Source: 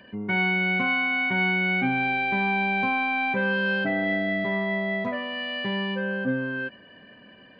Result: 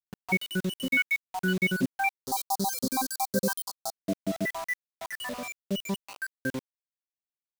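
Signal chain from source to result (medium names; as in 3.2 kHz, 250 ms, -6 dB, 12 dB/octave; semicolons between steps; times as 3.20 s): random holes in the spectrogram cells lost 84%; bit crusher 7-bit; 2.26–3.99 s: FFT filter 1.2 kHz 0 dB, 2.6 kHz -24 dB, 4.3 kHz +12 dB; trim +2.5 dB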